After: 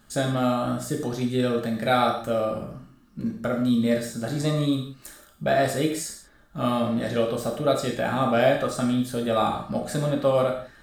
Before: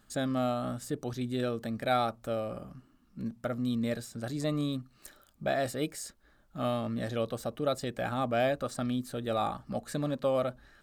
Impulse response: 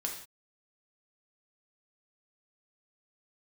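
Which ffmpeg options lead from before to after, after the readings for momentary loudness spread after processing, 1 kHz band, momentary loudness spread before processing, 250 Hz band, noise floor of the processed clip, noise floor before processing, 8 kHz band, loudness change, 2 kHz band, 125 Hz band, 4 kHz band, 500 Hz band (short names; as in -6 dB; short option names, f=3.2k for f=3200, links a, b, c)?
11 LU, +7.5 dB, 10 LU, +8.5 dB, -55 dBFS, -64 dBFS, +8.5 dB, +8.0 dB, +8.0 dB, +7.5 dB, +8.0 dB, +8.0 dB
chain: -filter_complex "[1:a]atrim=start_sample=2205[a];[0:a][a]afir=irnorm=-1:irlink=0,volume=6.5dB"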